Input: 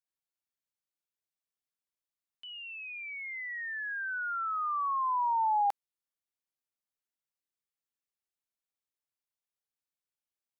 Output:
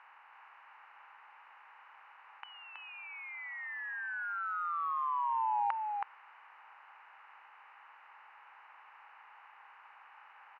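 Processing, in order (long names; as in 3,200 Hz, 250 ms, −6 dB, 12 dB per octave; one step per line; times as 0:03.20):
compressor on every frequency bin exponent 0.4
in parallel at −8.5 dB: soft clipping −27.5 dBFS, distortion −13 dB
on the sum: band-pass filter 520–2,200 Hz
single-tap delay 323 ms −4 dB
level −8 dB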